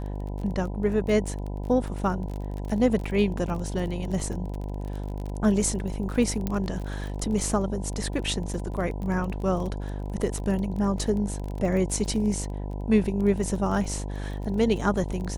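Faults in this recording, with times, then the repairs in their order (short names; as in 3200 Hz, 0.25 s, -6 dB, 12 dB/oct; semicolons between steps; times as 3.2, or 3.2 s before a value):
buzz 50 Hz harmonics 20 -32 dBFS
crackle 25/s -32 dBFS
6.47 pop -14 dBFS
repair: de-click; de-hum 50 Hz, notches 20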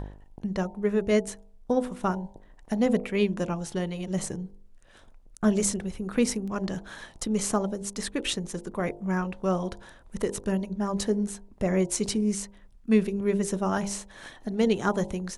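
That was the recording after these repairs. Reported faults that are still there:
6.47 pop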